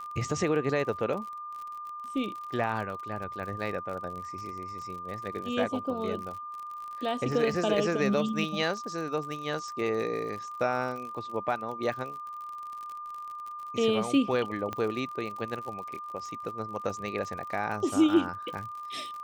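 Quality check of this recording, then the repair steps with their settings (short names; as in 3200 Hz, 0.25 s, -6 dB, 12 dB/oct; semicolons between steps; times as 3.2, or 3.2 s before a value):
crackle 54/s -37 dBFS
tone 1200 Hz -37 dBFS
14.73 pop -20 dBFS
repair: de-click; notch 1200 Hz, Q 30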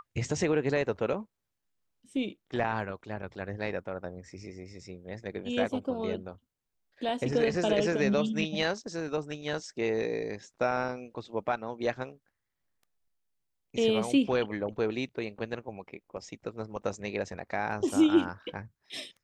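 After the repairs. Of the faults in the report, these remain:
none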